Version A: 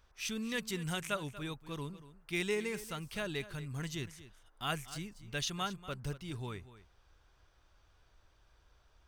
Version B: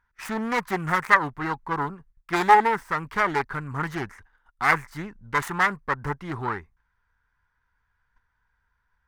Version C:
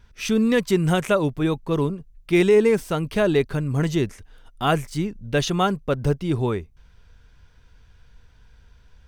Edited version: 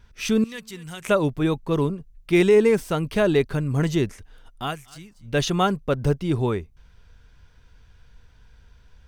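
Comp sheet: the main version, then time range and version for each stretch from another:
C
0.44–1.05 from A
4.64–5.28 from A, crossfade 0.24 s
not used: B

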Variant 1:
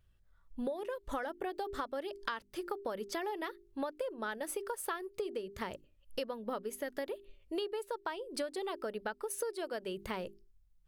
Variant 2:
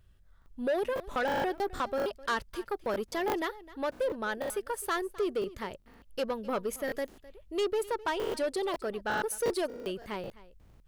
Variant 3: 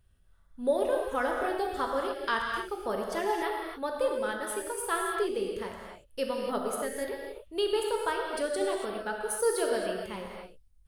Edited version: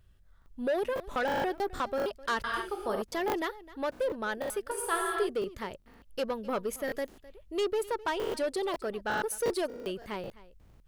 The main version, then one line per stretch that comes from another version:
2
2.44–3.02 from 3
4.71–5.29 from 3
not used: 1

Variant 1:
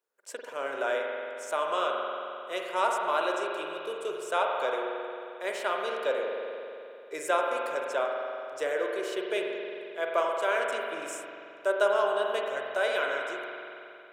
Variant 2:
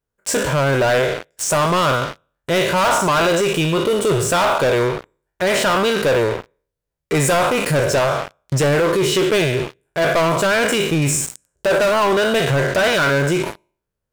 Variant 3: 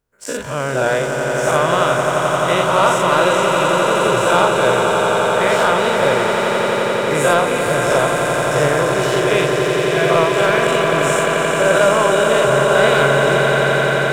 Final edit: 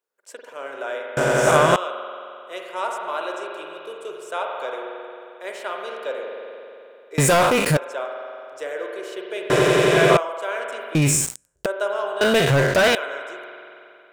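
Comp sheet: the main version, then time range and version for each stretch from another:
1
1.17–1.76 from 3
7.18–7.77 from 2
9.5–10.17 from 3
10.95–11.66 from 2
12.21–12.95 from 2

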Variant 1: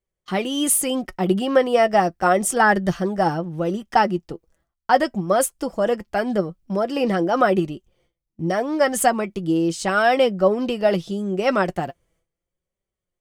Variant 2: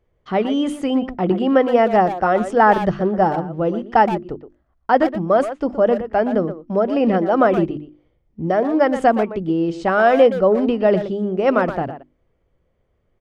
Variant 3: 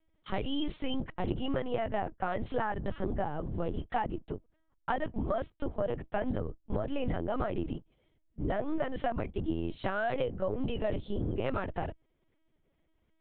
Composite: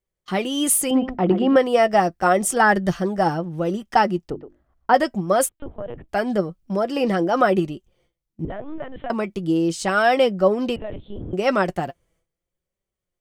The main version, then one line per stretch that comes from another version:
1
0.91–1.56 from 2
4.3–4.94 from 2
5.49–6.09 from 3
8.45–9.1 from 3
10.76–11.33 from 3

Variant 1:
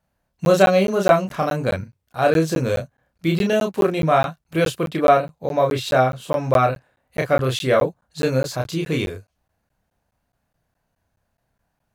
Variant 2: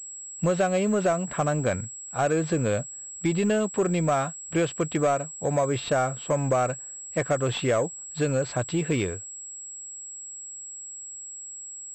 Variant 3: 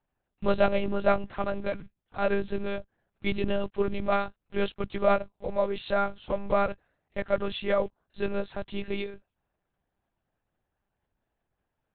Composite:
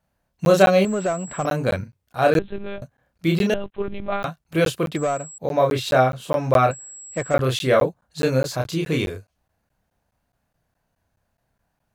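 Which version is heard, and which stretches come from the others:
1
0.85–1.45 from 2
2.39–2.82 from 3
3.54–4.23 from 3
4.96–5.38 from 2
6.71–7.34 from 2

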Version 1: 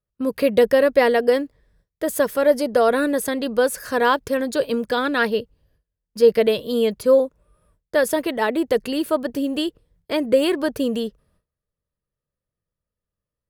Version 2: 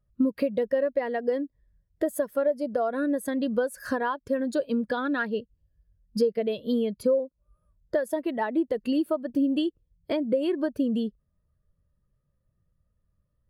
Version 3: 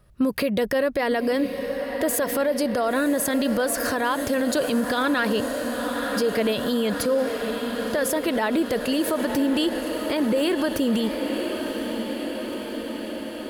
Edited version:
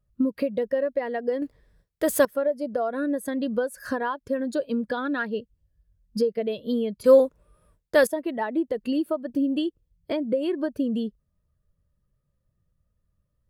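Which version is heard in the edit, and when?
2
1.42–2.25 from 1
7.04–8.07 from 1
not used: 3

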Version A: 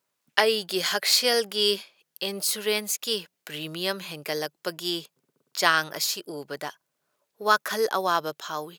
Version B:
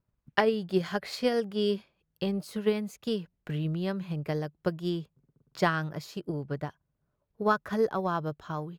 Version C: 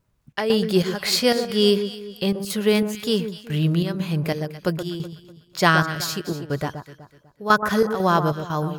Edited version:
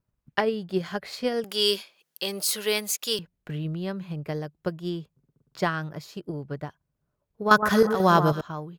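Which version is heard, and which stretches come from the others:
B
1.44–3.19 from A
7.51–8.41 from C

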